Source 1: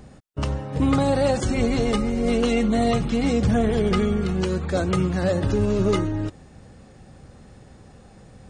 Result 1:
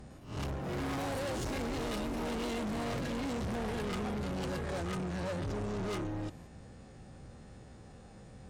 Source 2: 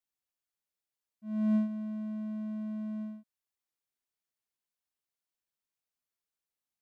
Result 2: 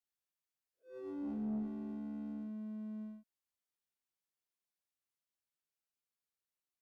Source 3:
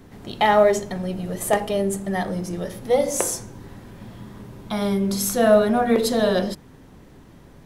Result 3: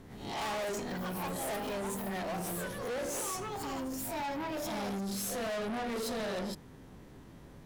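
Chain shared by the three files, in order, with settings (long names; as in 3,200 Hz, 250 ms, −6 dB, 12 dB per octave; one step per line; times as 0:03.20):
peak hold with a rise ahead of every peak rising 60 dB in 0.37 s
delay with pitch and tempo change per echo 106 ms, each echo +5 semitones, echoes 3, each echo −6 dB
tube saturation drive 28 dB, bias 0.2
level −6 dB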